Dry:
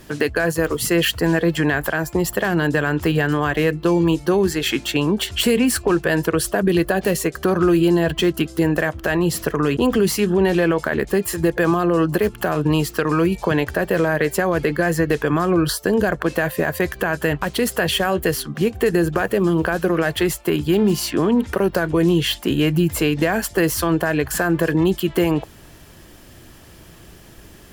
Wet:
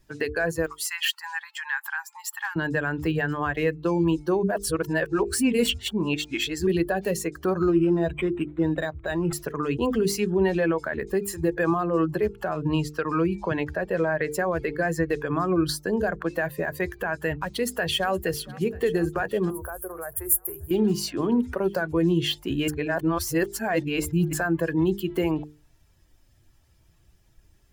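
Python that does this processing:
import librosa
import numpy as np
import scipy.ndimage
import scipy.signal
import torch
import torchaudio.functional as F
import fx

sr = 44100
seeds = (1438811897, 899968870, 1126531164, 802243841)

y = fx.brickwall_highpass(x, sr, low_hz=780.0, at=(0.66, 2.56))
y = fx.resample_linear(y, sr, factor=8, at=(7.57, 9.33))
y = fx.high_shelf(y, sr, hz=12000.0, db=-9.5, at=(12.07, 14.34))
y = fx.echo_throw(y, sr, start_s=17.47, length_s=0.64, ms=470, feedback_pct=85, wet_db=-13.5)
y = fx.curve_eq(y, sr, hz=(110.0, 250.0, 360.0, 1200.0, 3700.0, 6700.0, 11000.0), db=(0, -28, -7, -3, -22, -4, 14), at=(19.5, 20.71))
y = fx.edit(y, sr, fx.reverse_span(start_s=4.43, length_s=2.24),
    fx.reverse_span(start_s=22.68, length_s=1.65), tone=tone)
y = fx.bin_expand(y, sr, power=1.5)
y = fx.hum_notches(y, sr, base_hz=50, count=9)
y = F.gain(torch.from_numpy(y), -2.5).numpy()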